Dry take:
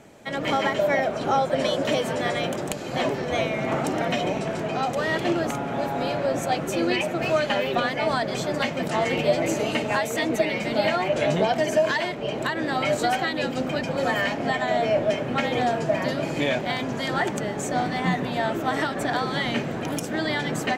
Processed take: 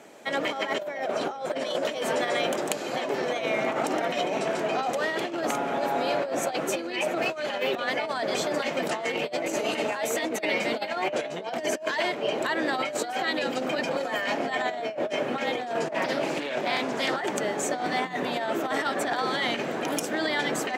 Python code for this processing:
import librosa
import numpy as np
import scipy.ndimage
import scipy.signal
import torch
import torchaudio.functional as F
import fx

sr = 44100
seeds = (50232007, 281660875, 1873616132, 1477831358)

y = fx.doppler_dist(x, sr, depth_ms=0.27, at=(15.85, 17.17))
y = fx.over_compress(y, sr, threshold_db=-26.0, ratio=-0.5)
y = scipy.signal.sosfilt(scipy.signal.butter(2, 310.0, 'highpass', fs=sr, output='sos'), y)